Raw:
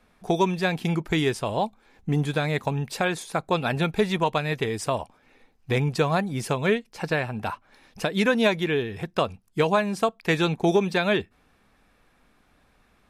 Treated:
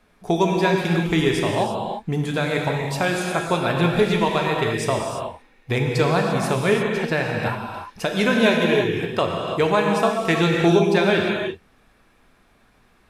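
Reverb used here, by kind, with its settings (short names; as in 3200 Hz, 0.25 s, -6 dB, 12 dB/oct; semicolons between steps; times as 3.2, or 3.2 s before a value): non-linear reverb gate 0.37 s flat, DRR 0 dB; gain +1.5 dB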